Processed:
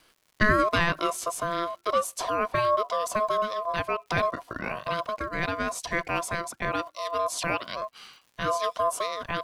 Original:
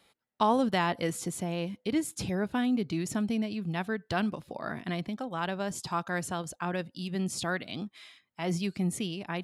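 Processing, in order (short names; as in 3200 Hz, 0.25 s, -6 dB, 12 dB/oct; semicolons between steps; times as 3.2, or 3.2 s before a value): crackle 270/s -53 dBFS; ring modulator 850 Hz; gain +6.5 dB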